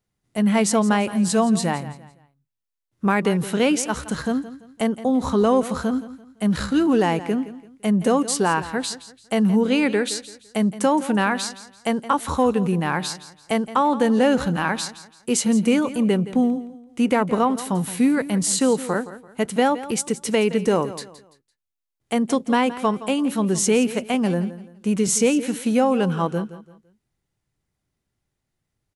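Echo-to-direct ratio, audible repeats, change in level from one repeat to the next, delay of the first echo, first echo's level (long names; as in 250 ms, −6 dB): −14.5 dB, 3, −10.0 dB, 169 ms, −15.0 dB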